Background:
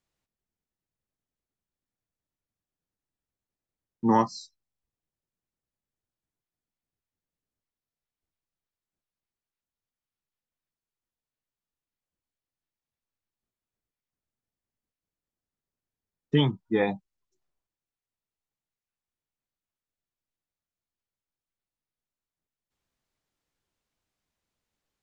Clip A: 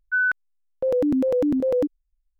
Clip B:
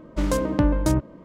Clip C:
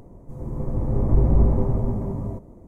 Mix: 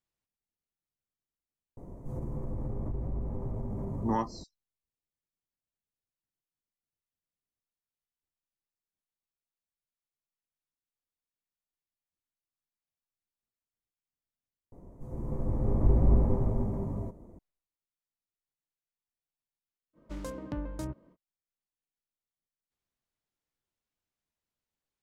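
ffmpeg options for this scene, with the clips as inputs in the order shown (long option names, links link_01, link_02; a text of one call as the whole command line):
ffmpeg -i bed.wav -i cue0.wav -i cue1.wav -i cue2.wav -filter_complex "[3:a]asplit=2[link_01][link_02];[0:a]volume=-8.5dB[link_03];[link_01]acompressor=threshold=-31dB:ratio=6:attack=3.2:release=140:knee=1:detection=peak[link_04];[link_02]equalizer=frequency=130:width_type=o:width=0.22:gain=-4[link_05];[link_03]asplit=2[link_06][link_07];[link_06]atrim=end=14.724[link_08];[link_05]atrim=end=2.67,asetpts=PTS-STARTPTS,volume=-5.5dB[link_09];[link_07]atrim=start=17.386[link_10];[link_04]atrim=end=2.67,asetpts=PTS-STARTPTS,volume=-0.5dB,afade=type=in:duration=0.004:curve=hsin,afade=type=out:start_time=2.666:duration=0.004:curve=hsin,adelay=1770[link_11];[2:a]atrim=end=1.24,asetpts=PTS-STARTPTS,volume=-16.5dB,afade=type=in:duration=0.05,afade=type=out:start_time=1.19:duration=0.05,adelay=19930[link_12];[link_08][link_09]acrossfade=duration=0.004:curve1=hsin:curve2=hsin[link_13];[link_13][link_10]acrossfade=duration=0.004:curve1=hsin:curve2=hsin[link_14];[link_14][link_11][link_12]amix=inputs=3:normalize=0" out.wav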